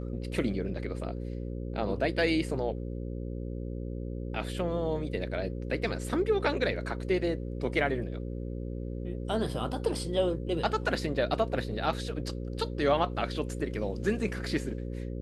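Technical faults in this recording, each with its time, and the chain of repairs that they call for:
buzz 60 Hz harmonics 9 -36 dBFS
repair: de-hum 60 Hz, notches 9

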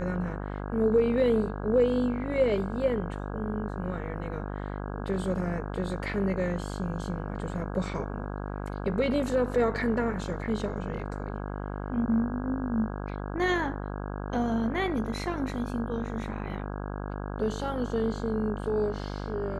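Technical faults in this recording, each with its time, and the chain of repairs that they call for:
buzz 50 Hz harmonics 33 -35 dBFS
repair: de-hum 50 Hz, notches 33

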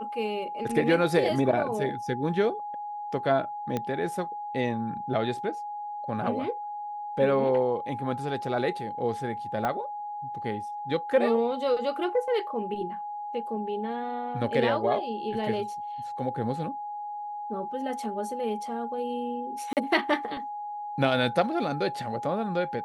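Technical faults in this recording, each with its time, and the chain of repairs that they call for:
tone 830 Hz -33 dBFS
3.77 pop -16 dBFS
9.65 pop -16 dBFS
19.73–19.77 gap 38 ms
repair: de-click; notch 830 Hz, Q 30; interpolate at 19.73, 38 ms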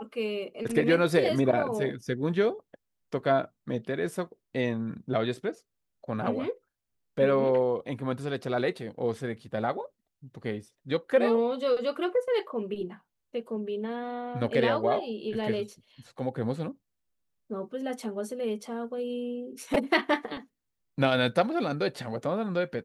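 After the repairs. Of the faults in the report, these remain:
9.65 pop

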